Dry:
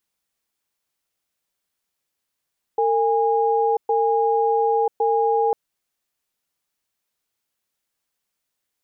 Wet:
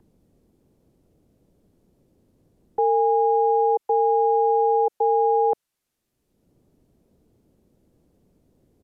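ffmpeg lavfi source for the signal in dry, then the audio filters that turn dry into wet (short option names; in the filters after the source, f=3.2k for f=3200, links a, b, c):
-f lavfi -i "aevalsrc='0.112*(sin(2*PI*454*t)+sin(2*PI*820*t))*clip(min(mod(t,1.11),0.99-mod(t,1.11))/0.005,0,1)':d=2.75:s=44100"
-filter_complex "[0:a]acrossover=split=440|470|500[a][b][c][d];[a]acompressor=mode=upward:threshold=-35dB:ratio=2.5[e];[e][b][c][d]amix=inputs=4:normalize=0,aresample=32000,aresample=44100"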